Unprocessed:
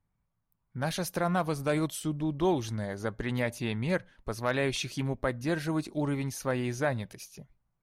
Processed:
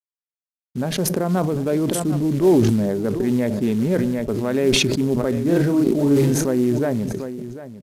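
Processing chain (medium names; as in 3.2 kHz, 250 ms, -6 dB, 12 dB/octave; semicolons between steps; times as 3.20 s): local Wiener filter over 15 samples; expander -50 dBFS; in parallel at +2.5 dB: peak limiter -26 dBFS, peak gain reduction 10 dB; on the sum: small resonant body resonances 240/390 Hz, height 16 dB, ringing for 30 ms; companded quantiser 6-bit; 5.33–6.48 s: doubling 35 ms -2.5 dB; delay 747 ms -15.5 dB; on a send at -20 dB: reverberation RT60 0.55 s, pre-delay 3 ms; on the sum: resampled via 32 kHz; decay stretcher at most 23 dB/s; trim -6.5 dB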